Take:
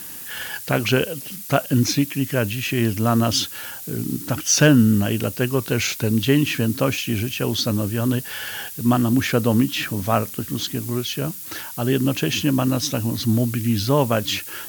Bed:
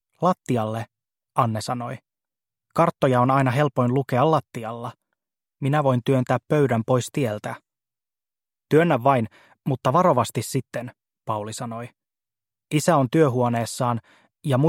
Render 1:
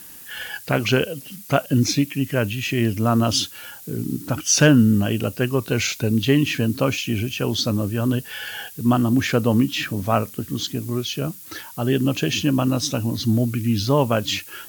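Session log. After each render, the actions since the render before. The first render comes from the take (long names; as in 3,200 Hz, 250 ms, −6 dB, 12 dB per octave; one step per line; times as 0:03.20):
noise reduction from a noise print 6 dB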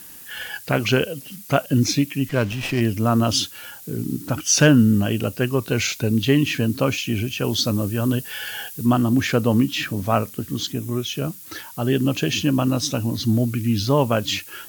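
0:02.29–0:02.81: windowed peak hold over 5 samples
0:07.44–0:08.86: high-shelf EQ 5,800 Hz +4.5 dB
0:10.72–0:11.16: notch filter 4,500 Hz, Q 5.2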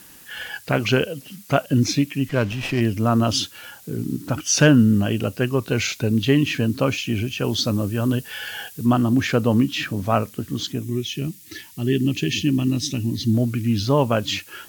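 0:10.84–0:13.34: gain on a spectral selection 420–1,700 Hz −14 dB
high-shelf EQ 8,600 Hz −7.5 dB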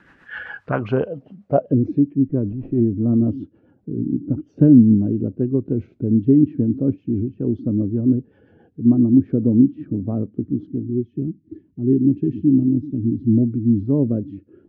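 low-pass filter sweep 1,600 Hz → 310 Hz, 0:00.33–0:02.20
rotating-speaker cabinet horn 7.5 Hz, later 0.7 Hz, at 0:10.56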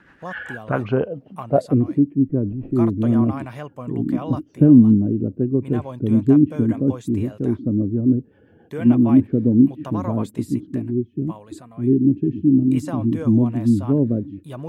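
mix in bed −13.5 dB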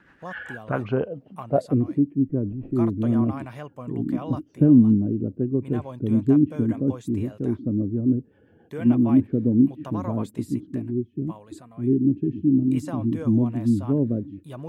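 level −4 dB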